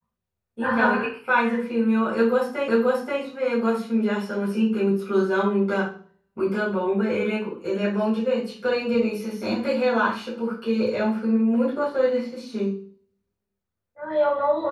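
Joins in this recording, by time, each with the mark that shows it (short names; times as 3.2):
2.68 repeat of the last 0.53 s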